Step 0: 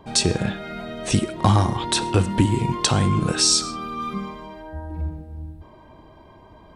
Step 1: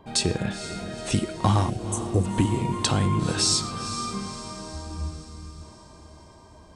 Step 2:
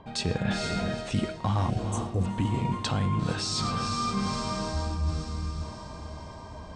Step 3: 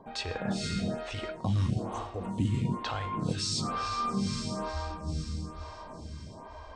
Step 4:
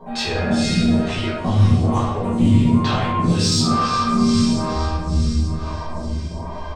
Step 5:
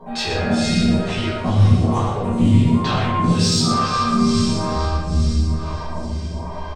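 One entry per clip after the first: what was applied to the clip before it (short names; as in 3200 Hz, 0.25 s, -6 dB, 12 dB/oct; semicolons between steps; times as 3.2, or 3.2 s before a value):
spectral delete 1.7–2.25, 790–5700 Hz; notch 5800 Hz, Q 17; on a send: diffused feedback echo 0.473 s, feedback 55%, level -11.5 dB; on the sum: gain -4 dB
bell 350 Hz -8 dB 0.38 oct; reverse; compressor 6:1, threshold -33 dBFS, peak gain reduction 15.5 dB; reverse; air absorption 91 m; gain +8.5 dB
photocell phaser 1.1 Hz
soft clip -20 dBFS, distortion -22 dB; doubler 12 ms -7 dB; reverb RT60 0.80 s, pre-delay 5 ms, DRR -8.5 dB; gain +4.5 dB
echo 0.117 s -8.5 dB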